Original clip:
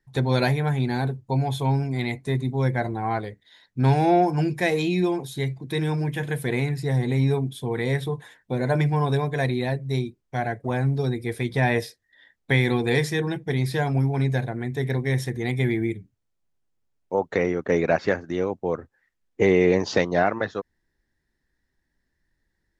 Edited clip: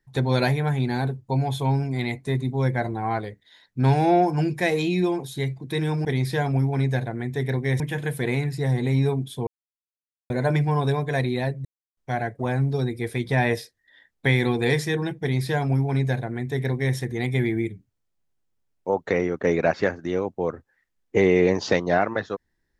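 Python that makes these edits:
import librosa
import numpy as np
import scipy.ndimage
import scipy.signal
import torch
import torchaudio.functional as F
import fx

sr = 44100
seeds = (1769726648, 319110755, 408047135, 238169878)

y = fx.edit(x, sr, fx.silence(start_s=7.72, length_s=0.83),
    fx.silence(start_s=9.9, length_s=0.32),
    fx.duplicate(start_s=13.46, length_s=1.75, to_s=6.05), tone=tone)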